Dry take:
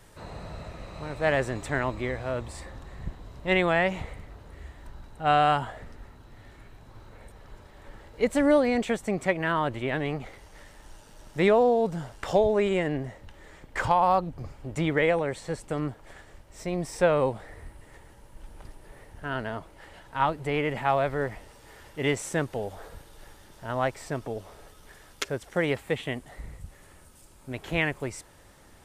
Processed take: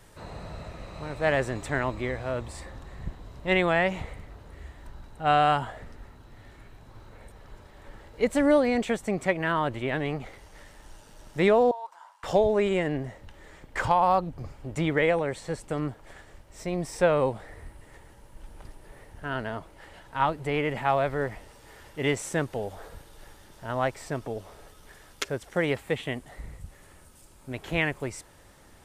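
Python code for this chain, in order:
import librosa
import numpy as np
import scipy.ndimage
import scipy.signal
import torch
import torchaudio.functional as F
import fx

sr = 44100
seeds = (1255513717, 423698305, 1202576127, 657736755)

y = fx.ladder_highpass(x, sr, hz=920.0, resonance_pct=80, at=(11.71, 12.24))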